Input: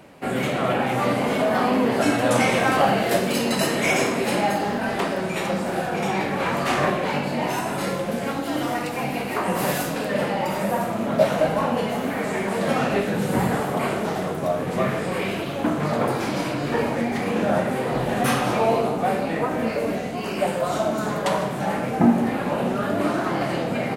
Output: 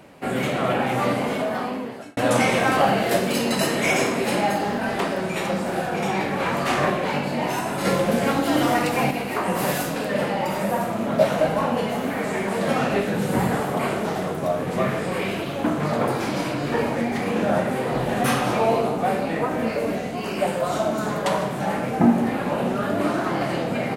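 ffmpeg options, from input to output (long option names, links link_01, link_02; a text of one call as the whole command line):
ffmpeg -i in.wav -filter_complex "[0:a]asettb=1/sr,asplit=3[link_01][link_02][link_03];[link_01]atrim=end=7.854[link_04];[link_02]atrim=start=7.85:end=9.11,asetpts=PTS-STARTPTS,afade=type=in:duration=0.004:curve=qsin,afade=type=out:start_time=1.256:duration=0.004:curve=qsin,acontrast=34[link_05];[link_03]atrim=start=9.106[link_06];[link_04][link_05]acrossfade=duration=0.004:curve1=hsin:curve2=qsin[link_07];[link_07][link_06]acrossfade=duration=0.004:curve1=qsin:curve2=hsin,asplit=2[link_08][link_09];[link_08]atrim=end=2.17,asetpts=PTS-STARTPTS,afade=type=out:start_time=1.05:duration=1.12[link_10];[link_09]atrim=start=2.17,asetpts=PTS-STARTPTS,afade=type=in:duration=0.004:curve=hsin[link_11];[link_10][link_11]concat=n=2:v=0:a=1" out.wav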